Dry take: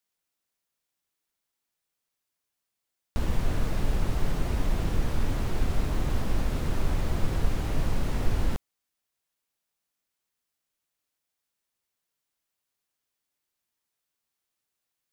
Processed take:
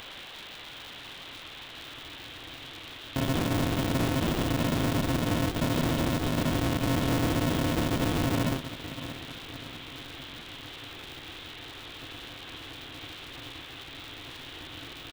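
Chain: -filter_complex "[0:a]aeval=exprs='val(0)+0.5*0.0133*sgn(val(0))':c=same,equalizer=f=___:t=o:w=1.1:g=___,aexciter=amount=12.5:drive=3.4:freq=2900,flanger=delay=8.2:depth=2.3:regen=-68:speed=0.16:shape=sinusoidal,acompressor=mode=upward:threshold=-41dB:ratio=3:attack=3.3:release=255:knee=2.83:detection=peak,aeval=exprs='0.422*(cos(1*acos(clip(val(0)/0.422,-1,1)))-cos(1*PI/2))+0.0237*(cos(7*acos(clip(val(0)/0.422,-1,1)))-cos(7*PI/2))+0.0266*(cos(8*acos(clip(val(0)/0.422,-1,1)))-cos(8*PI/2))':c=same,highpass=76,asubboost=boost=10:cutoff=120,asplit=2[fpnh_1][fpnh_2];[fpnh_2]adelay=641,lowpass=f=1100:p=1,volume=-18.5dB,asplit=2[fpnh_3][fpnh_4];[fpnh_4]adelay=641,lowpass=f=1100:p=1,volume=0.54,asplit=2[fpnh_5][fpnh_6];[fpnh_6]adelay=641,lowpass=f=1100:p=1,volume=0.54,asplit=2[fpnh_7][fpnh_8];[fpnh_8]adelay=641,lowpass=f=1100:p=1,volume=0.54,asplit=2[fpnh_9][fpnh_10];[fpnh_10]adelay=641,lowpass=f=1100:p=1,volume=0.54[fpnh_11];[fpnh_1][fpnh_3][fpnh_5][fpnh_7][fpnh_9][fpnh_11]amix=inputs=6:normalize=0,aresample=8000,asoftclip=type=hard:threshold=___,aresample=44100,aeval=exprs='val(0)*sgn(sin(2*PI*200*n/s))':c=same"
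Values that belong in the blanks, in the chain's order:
320, 8, -23.5dB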